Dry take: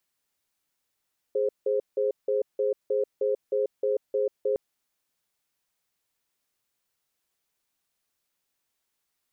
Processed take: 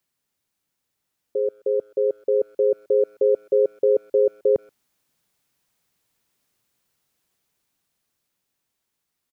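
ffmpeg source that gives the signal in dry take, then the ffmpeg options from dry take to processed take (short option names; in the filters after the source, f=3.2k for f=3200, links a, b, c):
-f lavfi -i "aevalsrc='0.0562*(sin(2*PI*416*t)+sin(2*PI*527*t))*clip(min(mod(t,0.31),0.14-mod(t,0.31))/0.005,0,1)':d=3.21:s=44100"
-filter_complex "[0:a]equalizer=f=150:t=o:w=2.3:g=7,dynaudnorm=f=400:g=11:m=6.5dB,asplit=2[a][b];[b]adelay=130,highpass=300,lowpass=3.4k,asoftclip=type=hard:threshold=-20dB,volume=-28dB[c];[a][c]amix=inputs=2:normalize=0"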